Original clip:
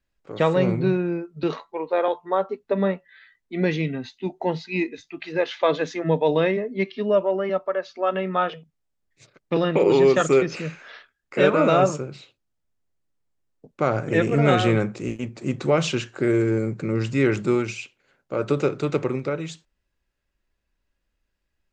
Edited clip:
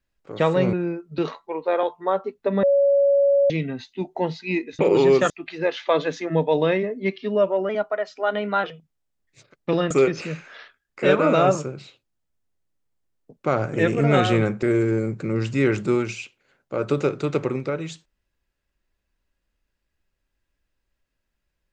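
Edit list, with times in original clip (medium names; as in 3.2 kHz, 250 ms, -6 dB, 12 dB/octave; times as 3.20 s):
0.73–0.98 s: delete
2.88–3.75 s: bleep 561 Hz -14 dBFS
7.43–8.47 s: speed 110%
9.74–10.25 s: move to 5.04 s
14.97–16.22 s: delete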